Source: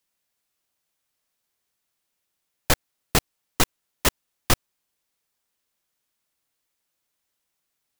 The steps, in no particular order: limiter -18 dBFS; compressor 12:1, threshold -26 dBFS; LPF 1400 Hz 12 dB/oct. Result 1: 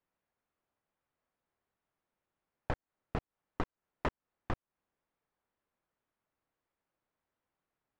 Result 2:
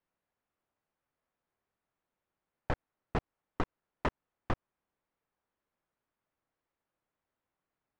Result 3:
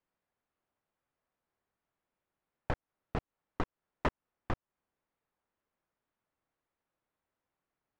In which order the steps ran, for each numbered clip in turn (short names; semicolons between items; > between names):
compressor > LPF > limiter; LPF > limiter > compressor; LPF > compressor > limiter